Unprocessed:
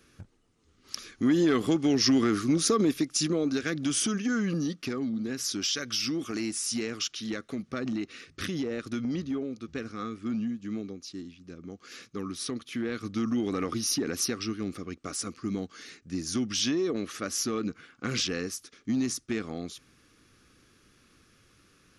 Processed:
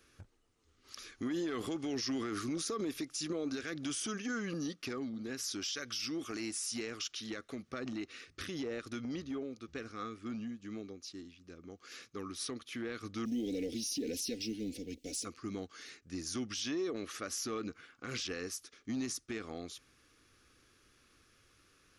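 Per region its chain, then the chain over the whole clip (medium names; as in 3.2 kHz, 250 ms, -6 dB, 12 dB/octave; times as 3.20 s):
13.25–15.25 s: companding laws mixed up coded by mu + Chebyshev band-stop 460–2900 Hz + comb 4 ms, depth 59%
whole clip: peaking EQ 180 Hz -8 dB 1.3 oct; peak limiter -25 dBFS; trim -4 dB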